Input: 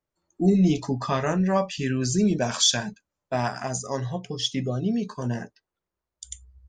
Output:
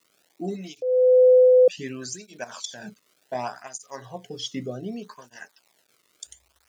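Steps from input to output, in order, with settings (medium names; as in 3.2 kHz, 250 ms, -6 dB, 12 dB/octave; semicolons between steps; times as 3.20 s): 2.44–2.84 s: level held to a coarse grid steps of 18 dB; 3.34–4.05 s: expander -27 dBFS; 5.36–6.27 s: tilt shelf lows -8.5 dB, about 660 Hz; crackle 440 per s -44 dBFS; 0.82–1.68 s: bleep 506 Hz -8.5 dBFS; cancelling through-zero flanger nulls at 0.66 Hz, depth 1.3 ms; trim -2 dB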